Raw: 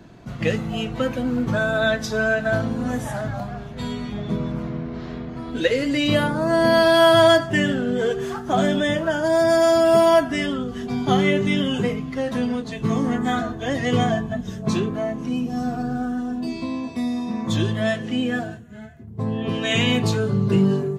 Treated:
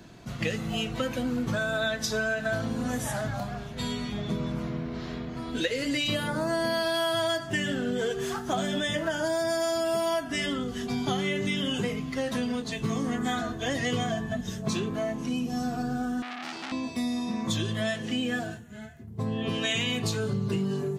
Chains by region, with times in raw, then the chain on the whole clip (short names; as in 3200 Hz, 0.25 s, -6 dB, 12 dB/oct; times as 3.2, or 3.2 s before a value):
16.22–16.72 HPF 160 Hz + core saturation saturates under 2400 Hz
whole clip: high shelf 2500 Hz +9.5 dB; de-hum 292.2 Hz, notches 7; compressor, threshold -21 dBFS; gain -4 dB